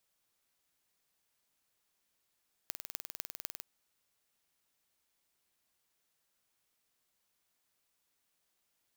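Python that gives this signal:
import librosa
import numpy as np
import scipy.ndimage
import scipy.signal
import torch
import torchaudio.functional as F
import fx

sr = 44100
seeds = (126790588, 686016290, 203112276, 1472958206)

y = fx.impulse_train(sr, length_s=0.95, per_s=20.0, accent_every=5, level_db=-9.0)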